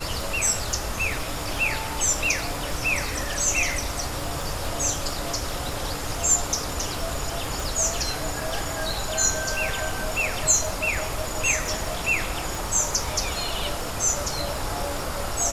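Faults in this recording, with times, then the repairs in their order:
surface crackle 50 per second −31 dBFS
0:07.60: click
0:12.55: click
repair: click removal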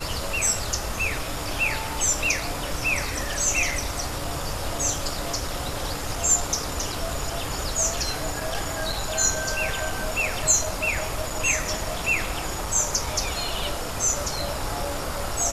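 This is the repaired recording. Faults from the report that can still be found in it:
0:07.60: click

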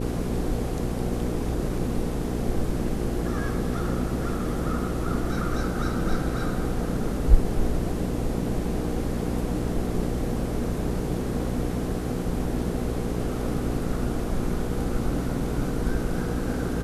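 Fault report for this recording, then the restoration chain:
mains hum 60 Hz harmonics 8 −30 dBFS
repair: hum removal 60 Hz, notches 8

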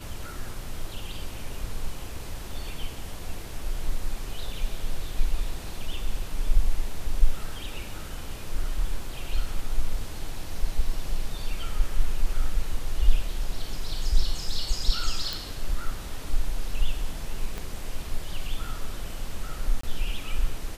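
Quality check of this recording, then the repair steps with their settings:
0:15.33: click
0:17.58: click −19 dBFS
0:19.81–0:19.83: drop-out 24 ms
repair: click removal
repair the gap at 0:19.81, 24 ms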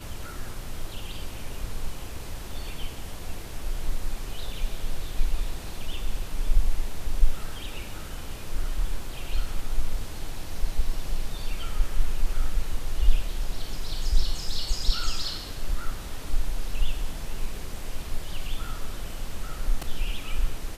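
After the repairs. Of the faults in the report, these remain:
0:17.58: click

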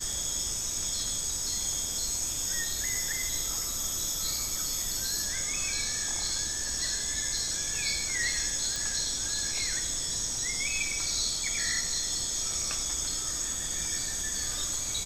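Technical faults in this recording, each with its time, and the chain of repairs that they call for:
0:08.76: click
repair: click removal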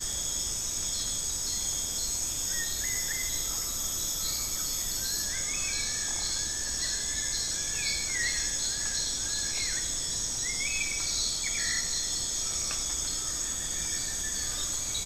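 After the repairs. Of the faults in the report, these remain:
none of them is left

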